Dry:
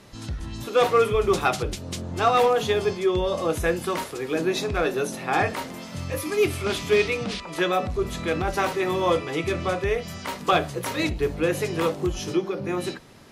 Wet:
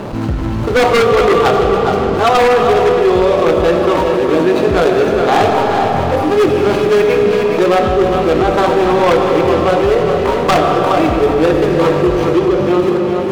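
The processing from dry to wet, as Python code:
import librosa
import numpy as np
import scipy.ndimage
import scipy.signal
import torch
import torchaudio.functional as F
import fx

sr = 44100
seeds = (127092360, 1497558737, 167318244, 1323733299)

p1 = scipy.ndimage.median_filter(x, 25, mode='constant')
p2 = fx.high_shelf(p1, sr, hz=6000.0, db=-10.5)
p3 = fx.rider(p2, sr, range_db=10, speed_s=2.0)
p4 = p2 + (p3 * librosa.db_to_amplitude(-1.5))
p5 = fx.low_shelf(p4, sr, hz=200.0, db=-9.5)
p6 = p5 + fx.echo_single(p5, sr, ms=415, db=-9.0, dry=0)
p7 = fx.rev_freeverb(p6, sr, rt60_s=3.6, hf_ratio=0.8, predelay_ms=35, drr_db=4.5)
p8 = 10.0 ** (-12.0 / 20.0) * (np.abs((p7 / 10.0 ** (-12.0 / 20.0) + 3.0) % 4.0 - 2.0) - 1.0)
p9 = fx.env_flatten(p8, sr, amount_pct=50)
y = p9 * librosa.db_to_amplitude(6.5)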